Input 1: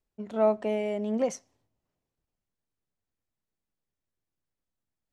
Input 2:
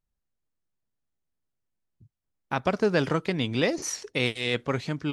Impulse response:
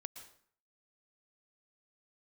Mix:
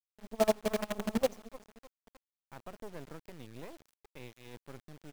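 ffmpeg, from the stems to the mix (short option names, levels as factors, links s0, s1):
-filter_complex "[0:a]bandreject=f=60:t=h:w=6,bandreject=f=120:t=h:w=6,bandreject=f=180:t=h:w=6,bandreject=f=240:t=h:w=6,bandreject=f=300:t=h:w=6,bandreject=f=360:t=h:w=6,bandreject=f=420:t=h:w=6,aeval=exprs='val(0)*pow(10,-27*(0.5-0.5*cos(2*PI*12*n/s))/20)':c=same,volume=1.26,asplit=3[s0][s1][s2];[s1]volume=0.0631[s3];[s2]volume=0.168[s4];[1:a]volume=0.126[s5];[2:a]atrim=start_sample=2205[s6];[s3][s6]afir=irnorm=-1:irlink=0[s7];[s4]aecho=0:1:304|608|912|1216|1520|1824:1|0.4|0.16|0.064|0.0256|0.0102[s8];[s0][s5][s7][s8]amix=inputs=4:normalize=0,lowpass=f=1100:p=1,acrusher=bits=6:dc=4:mix=0:aa=0.000001"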